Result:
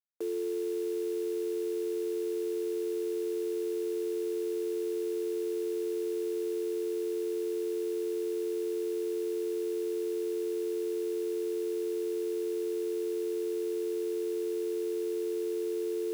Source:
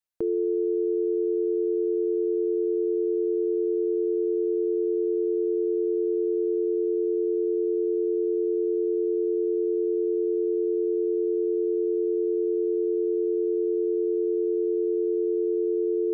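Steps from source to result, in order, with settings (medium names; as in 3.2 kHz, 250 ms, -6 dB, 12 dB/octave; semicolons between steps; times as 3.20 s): high-pass 330 Hz 24 dB/octave; bit crusher 7-bit; trim -6.5 dB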